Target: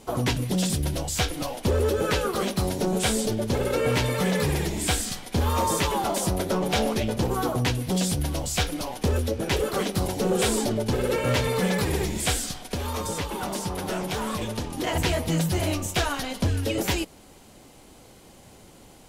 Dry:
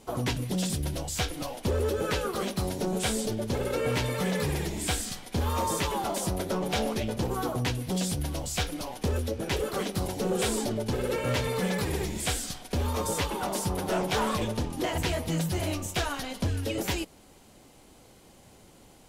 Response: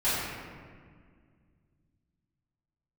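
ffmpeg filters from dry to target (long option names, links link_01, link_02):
-filter_complex "[0:a]asettb=1/sr,asplit=3[link_01][link_02][link_03];[link_01]atrim=end=12.494[link_04];[link_02]atrim=start=12.49:end=14.87,asetpts=PTS-STARTPTS,afade=type=in:duration=0.004:curve=qsin,afade=type=out:start_time=2.376:duration=0.004:curve=qsin,acrossover=split=330|1100|6900[link_05][link_06][link_07][link_08];[link_05]acompressor=threshold=-35dB:ratio=4[link_09];[link_06]acompressor=threshold=-39dB:ratio=4[link_10];[link_07]acompressor=threshold=-39dB:ratio=4[link_11];[link_08]acompressor=threshold=-45dB:ratio=4[link_12];[link_09][link_10][link_11][link_12]amix=inputs=4:normalize=0[link_13];[link_03]atrim=start=14.866[link_14];[link_04][link_13]acrossfade=duration=0.004:curve1=hsin:curve2=qsin[link_15];[link_15][link_14]acrossfade=duration=0.004:curve1=qsin:curve2=hsin,volume=4.5dB"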